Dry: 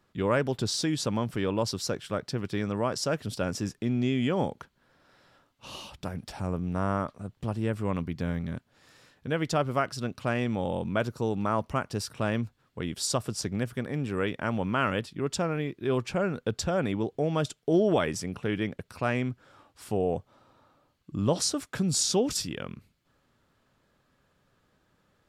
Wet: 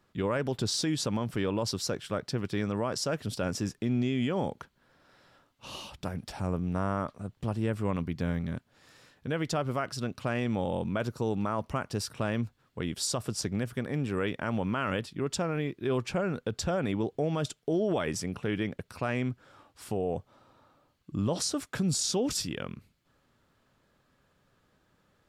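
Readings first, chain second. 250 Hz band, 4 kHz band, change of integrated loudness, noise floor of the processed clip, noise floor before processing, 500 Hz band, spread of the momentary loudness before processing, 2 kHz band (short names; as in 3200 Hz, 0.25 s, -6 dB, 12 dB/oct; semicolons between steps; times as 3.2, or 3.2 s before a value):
-1.5 dB, -1.5 dB, -2.0 dB, -71 dBFS, -71 dBFS, -2.5 dB, 10 LU, -2.5 dB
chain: limiter -20.5 dBFS, peak gain reduction 6 dB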